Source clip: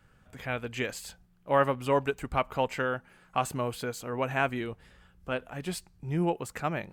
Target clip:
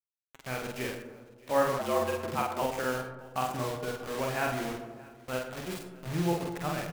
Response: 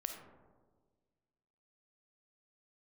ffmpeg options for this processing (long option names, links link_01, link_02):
-filter_complex "[0:a]highshelf=frequency=2800:gain=-6.5,acrusher=bits=5:mix=0:aa=0.000001,flanger=delay=3:depth=2.7:regen=-79:speed=1.4:shape=sinusoidal,aecho=1:1:622:0.0708,asplit=2[link_01][link_02];[1:a]atrim=start_sample=2205,asetrate=48510,aresample=44100,adelay=47[link_03];[link_02][link_03]afir=irnorm=-1:irlink=0,volume=2dB[link_04];[link_01][link_04]amix=inputs=2:normalize=0,asettb=1/sr,asplit=3[link_05][link_06][link_07];[link_05]atrim=end=1.794[link_08];[link_06]atrim=start=1.79:end=2.62,asetpts=PTS-STARTPTS,afade=type=in:duration=0.004:curve=qsin,afade=type=out:start_time=0.826:duration=0.004:curve=qsin,afreqshift=91[link_09];[link_07]atrim=start=2.616[link_10];[link_08][link_09]acrossfade=duration=0.004:curve1=hsin:curve2=qsin[link_11];[link_11][link_10]acrossfade=duration=0.004:curve1=qsin:curve2=hsin"